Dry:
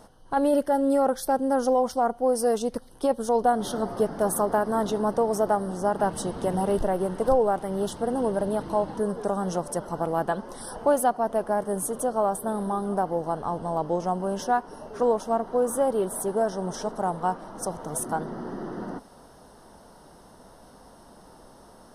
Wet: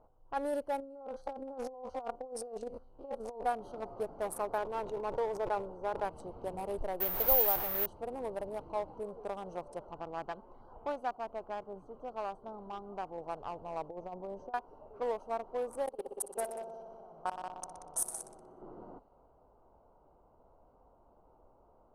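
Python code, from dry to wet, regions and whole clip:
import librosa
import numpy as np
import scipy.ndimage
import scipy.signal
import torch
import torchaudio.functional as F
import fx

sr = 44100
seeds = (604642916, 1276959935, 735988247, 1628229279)

y = fx.chain(x, sr, fx.spec_steps(hold_ms=50),
    fx.over_compress(threshold_db=-27.0, ratio=-0.5), at=(0.8, 3.46))
y = fx.chain(y, sr, fx.lowpass(hz=2900.0, slope=6),
    fx.comb(ms=2.1, depth=0.38),
    fx.sustainer(db_per_s=60.0), at=(4.58, 6.05))
y = fx.chain(y, sr, fx.delta_mod(bps=64000, step_db=-21.5),
    fx.high_shelf(hz=2600.0, db=-8.0),
    fx.resample_bad(factor=3, down='filtered', up='zero_stuff'), at=(7.0, 7.86))
y = fx.chain(y, sr, fx.lowpass(hz=4800.0, slope=12),
    fx.peak_eq(hz=540.0, db=-5.5, octaves=0.85), at=(9.93, 13.18))
y = fx.chain(y, sr, fx.lowpass(hz=7300.0, slope=24),
    fx.peak_eq(hz=3100.0, db=-14.5, octaves=1.9),
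    fx.over_compress(threshold_db=-28.0, ratio=-0.5), at=(13.88, 14.54))
y = fx.chain(y, sr, fx.high_shelf(hz=2300.0, db=10.5),
    fx.level_steps(step_db=22),
    fx.echo_heads(ms=61, heads='all three', feedback_pct=66, wet_db=-9.0), at=(15.86, 18.62))
y = fx.wiener(y, sr, points=25)
y = fx.env_lowpass(y, sr, base_hz=2000.0, full_db=-22.5)
y = fx.peak_eq(y, sr, hz=200.0, db=-13.0, octaves=1.5)
y = y * 10.0 ** (-8.0 / 20.0)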